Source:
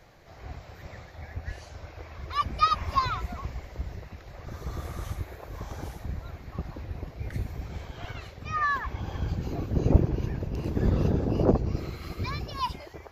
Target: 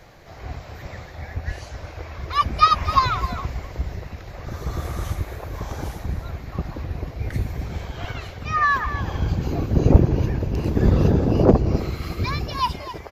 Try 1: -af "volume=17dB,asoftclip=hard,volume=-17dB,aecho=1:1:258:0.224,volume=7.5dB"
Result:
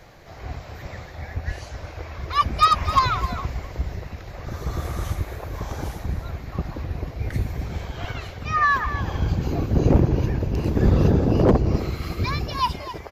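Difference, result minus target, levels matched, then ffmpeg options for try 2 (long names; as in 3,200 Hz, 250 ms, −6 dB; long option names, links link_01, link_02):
gain into a clipping stage and back: distortion +12 dB
-af "volume=9dB,asoftclip=hard,volume=-9dB,aecho=1:1:258:0.224,volume=7.5dB"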